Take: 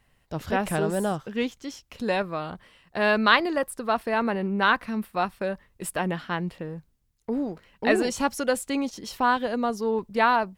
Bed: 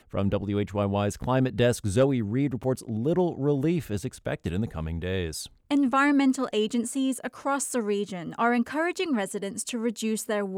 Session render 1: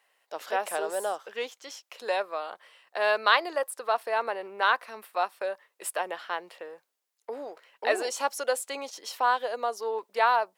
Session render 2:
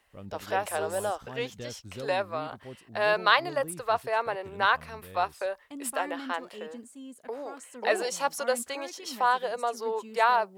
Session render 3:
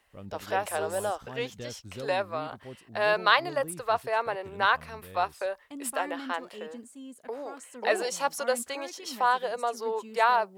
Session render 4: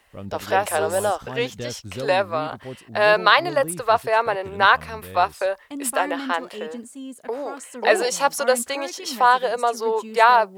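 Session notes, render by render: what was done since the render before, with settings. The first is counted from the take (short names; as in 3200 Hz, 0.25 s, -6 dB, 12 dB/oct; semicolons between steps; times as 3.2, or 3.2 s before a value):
HPF 490 Hz 24 dB/oct; dynamic EQ 2100 Hz, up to -4 dB, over -37 dBFS, Q 0.77
add bed -18 dB
nothing audible
gain +8.5 dB; limiter -1 dBFS, peak gain reduction 3 dB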